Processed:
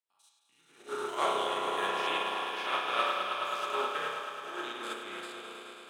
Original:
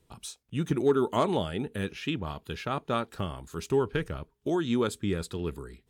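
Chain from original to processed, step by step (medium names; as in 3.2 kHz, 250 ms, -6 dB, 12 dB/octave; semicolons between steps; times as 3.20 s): spectrogram pixelated in time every 100 ms; high-pass 970 Hz 12 dB/octave; echo with a slow build-up 107 ms, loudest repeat 5, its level -7.5 dB; spring tank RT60 1.3 s, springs 31 ms, chirp 60 ms, DRR -3.5 dB; upward expansion 2.5:1, over -46 dBFS; trim +4.5 dB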